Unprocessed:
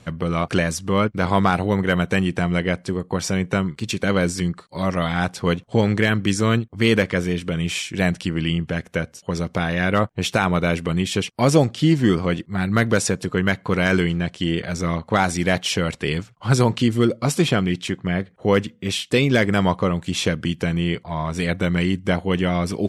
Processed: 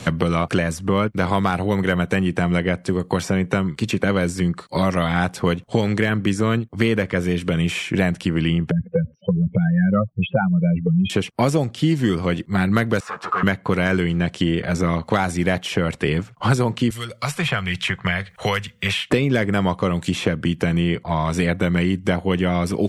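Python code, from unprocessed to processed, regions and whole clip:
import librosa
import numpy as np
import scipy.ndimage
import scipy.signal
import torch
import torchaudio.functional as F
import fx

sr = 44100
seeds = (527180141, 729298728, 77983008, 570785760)

y = fx.chain(x, sr, fx.spec_expand(power=3.5),
    fx.steep_lowpass(hz=2900.0, slope=48), at=(8.71, 11.1))
y = fx.chain(y, sr, fx.leveller(passes=5),
    fx.bandpass_q(hz=1200.0, q=4.9),
    fx.ensemble(), at=(13.0, 13.43))
y = fx.chain(y, sr, fx.tone_stack(knobs='10-0-10'),
    fx.band_squash(depth_pct=70), at=(16.9, 19.1))
y = fx.dynamic_eq(y, sr, hz=5000.0, q=0.83, threshold_db=-41.0, ratio=4.0, max_db=-5)
y = fx.band_squash(y, sr, depth_pct=100)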